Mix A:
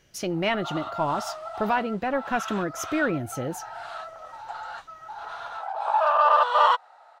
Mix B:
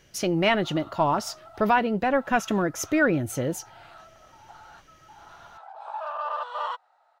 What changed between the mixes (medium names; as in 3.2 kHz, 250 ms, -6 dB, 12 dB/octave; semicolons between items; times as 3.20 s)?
speech +3.5 dB; background -12.0 dB